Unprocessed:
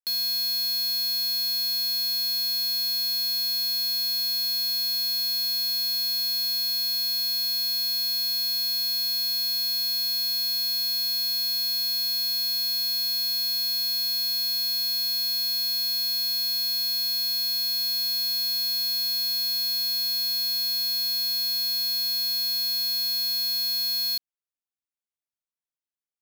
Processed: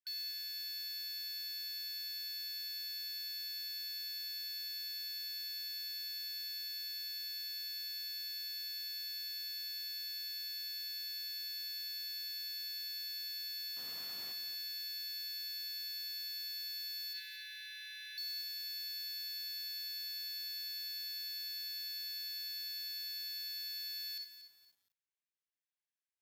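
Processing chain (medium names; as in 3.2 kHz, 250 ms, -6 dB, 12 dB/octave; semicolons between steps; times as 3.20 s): 17.13–18.18 s: careless resampling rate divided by 6×, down filtered, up hold; brick-wall FIR high-pass 1.4 kHz; 13.76–14.32 s: modulation noise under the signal 17 dB; reverberation RT60 0.40 s, pre-delay 10 ms, DRR 11 dB; frequency shift +95 Hz; low-pass 1.9 kHz 6 dB/octave; peak limiter -39 dBFS, peak gain reduction 9.5 dB; bit-crushed delay 235 ms, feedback 35%, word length 11-bit, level -11 dB; trim +3 dB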